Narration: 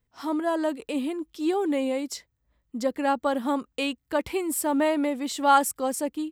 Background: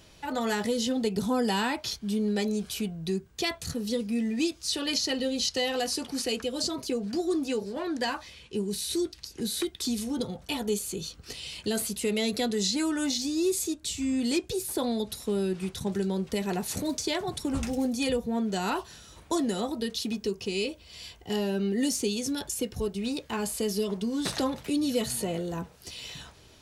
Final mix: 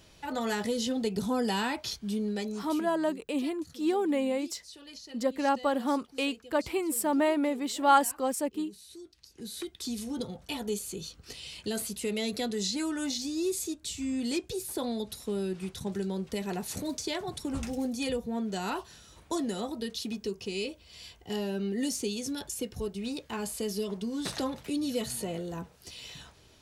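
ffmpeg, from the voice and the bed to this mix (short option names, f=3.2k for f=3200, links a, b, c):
-filter_complex "[0:a]adelay=2400,volume=-2.5dB[a];[1:a]volume=12.5dB,afade=t=out:st=2.07:d=0.94:silence=0.149624,afade=t=in:st=9.04:d=1.06:silence=0.177828[b];[a][b]amix=inputs=2:normalize=0"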